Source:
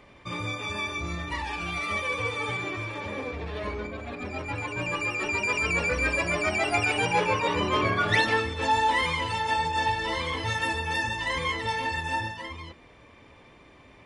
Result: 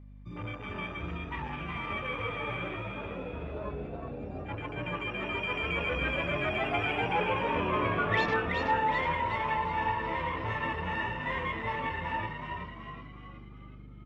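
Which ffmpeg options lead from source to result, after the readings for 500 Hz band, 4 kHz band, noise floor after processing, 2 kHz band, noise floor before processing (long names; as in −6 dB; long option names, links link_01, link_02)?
−3.5 dB, −8.5 dB, −47 dBFS, −6.0 dB, −53 dBFS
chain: -filter_complex "[0:a]afwtdn=0.0282,aemphasis=mode=reproduction:type=50fm,aeval=exprs='val(0)+0.00708*(sin(2*PI*50*n/s)+sin(2*PI*2*50*n/s)/2+sin(2*PI*3*50*n/s)/3+sin(2*PI*4*50*n/s)/4+sin(2*PI*5*50*n/s)/5)':channel_layout=same,asplit=2[link_01][link_02];[link_02]asplit=6[link_03][link_04][link_05][link_06][link_07][link_08];[link_03]adelay=372,afreqshift=72,volume=-5dB[link_09];[link_04]adelay=744,afreqshift=144,volume=-11.6dB[link_10];[link_05]adelay=1116,afreqshift=216,volume=-18.1dB[link_11];[link_06]adelay=1488,afreqshift=288,volume=-24.7dB[link_12];[link_07]adelay=1860,afreqshift=360,volume=-31.2dB[link_13];[link_08]adelay=2232,afreqshift=432,volume=-37.8dB[link_14];[link_09][link_10][link_11][link_12][link_13][link_14]amix=inputs=6:normalize=0[link_15];[link_01][link_15]amix=inputs=2:normalize=0,volume=-5dB"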